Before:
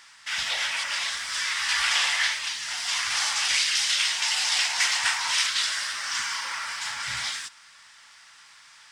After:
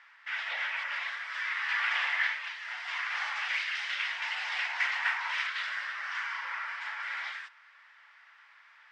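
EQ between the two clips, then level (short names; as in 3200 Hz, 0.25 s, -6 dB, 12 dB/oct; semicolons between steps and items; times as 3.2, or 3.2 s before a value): HPF 490 Hz 24 dB/oct; synth low-pass 2000 Hz, resonance Q 1.6; -6.5 dB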